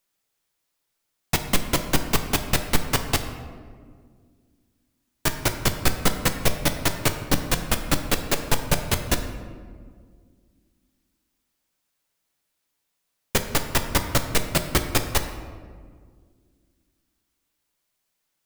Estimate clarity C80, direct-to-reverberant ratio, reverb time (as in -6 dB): 10.0 dB, 6.0 dB, 1.9 s